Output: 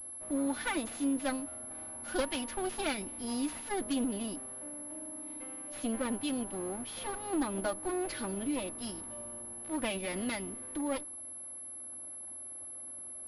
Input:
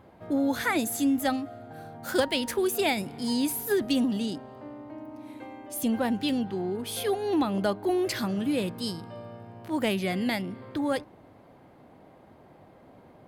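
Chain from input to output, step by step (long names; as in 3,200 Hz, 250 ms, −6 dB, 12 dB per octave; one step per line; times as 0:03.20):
lower of the sound and its delayed copy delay 3.4 ms
switching amplifier with a slow clock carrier 11,000 Hz
level −6.5 dB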